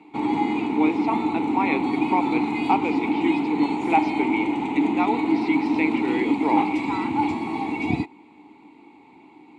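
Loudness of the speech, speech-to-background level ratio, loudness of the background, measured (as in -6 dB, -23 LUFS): -27.0 LUFS, -2.5 dB, -24.5 LUFS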